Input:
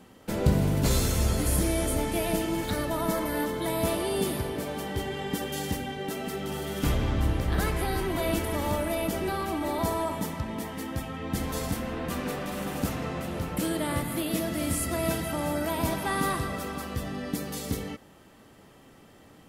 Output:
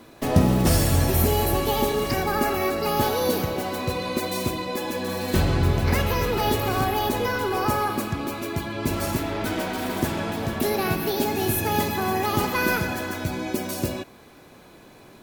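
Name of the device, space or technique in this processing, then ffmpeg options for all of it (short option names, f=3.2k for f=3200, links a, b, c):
nightcore: -af "asetrate=56448,aresample=44100,volume=5dB"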